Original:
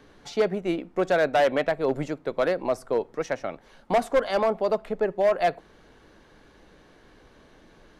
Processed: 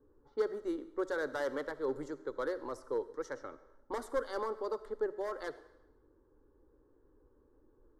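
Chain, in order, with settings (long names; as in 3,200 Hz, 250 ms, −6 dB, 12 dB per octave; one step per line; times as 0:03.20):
tape wow and flutter 16 cents
phaser with its sweep stopped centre 680 Hz, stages 6
low-pass that shuts in the quiet parts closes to 510 Hz, open at −27 dBFS
on a send: convolution reverb RT60 0.90 s, pre-delay 20 ms, DRR 15 dB
on the sum: level −8.5 dB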